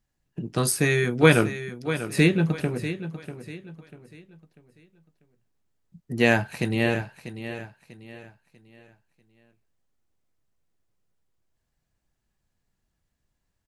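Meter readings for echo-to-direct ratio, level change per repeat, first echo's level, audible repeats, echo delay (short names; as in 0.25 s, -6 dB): -11.0 dB, -9.0 dB, -11.5 dB, 3, 0.643 s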